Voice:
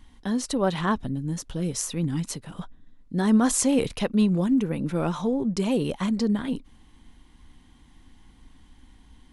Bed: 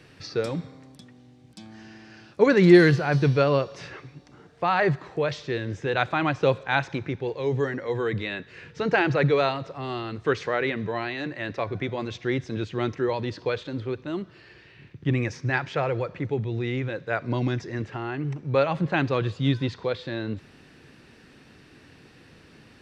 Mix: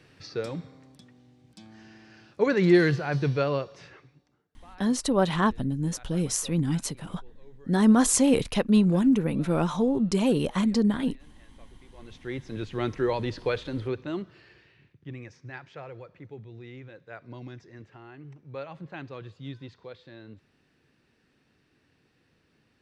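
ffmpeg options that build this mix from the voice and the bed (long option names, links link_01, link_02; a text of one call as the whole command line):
ffmpeg -i stem1.wav -i stem2.wav -filter_complex "[0:a]adelay=4550,volume=1dB[link_01];[1:a]volume=23dB,afade=type=out:start_time=3.46:duration=0.99:silence=0.0668344,afade=type=in:start_time=11.91:duration=1.12:silence=0.0398107,afade=type=out:start_time=13.99:duration=1:silence=0.16788[link_02];[link_01][link_02]amix=inputs=2:normalize=0" out.wav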